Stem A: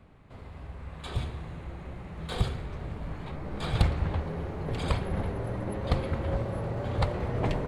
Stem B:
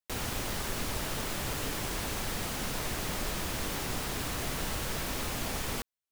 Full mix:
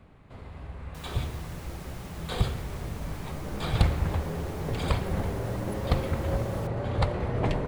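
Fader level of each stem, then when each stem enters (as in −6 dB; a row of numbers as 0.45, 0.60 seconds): +1.5, −13.5 decibels; 0.00, 0.85 seconds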